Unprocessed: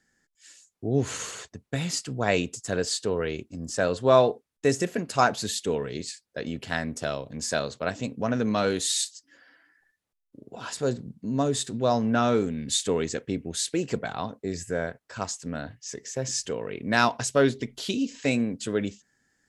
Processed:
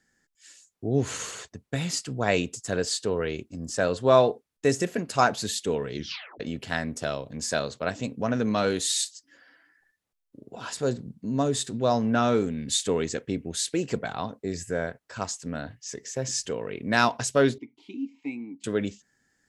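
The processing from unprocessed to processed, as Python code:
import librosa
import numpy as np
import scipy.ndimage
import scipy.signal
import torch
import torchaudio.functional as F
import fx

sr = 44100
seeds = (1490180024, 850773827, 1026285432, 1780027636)

y = fx.vowel_filter(x, sr, vowel='u', at=(17.58, 18.64))
y = fx.edit(y, sr, fx.tape_stop(start_s=5.95, length_s=0.45), tone=tone)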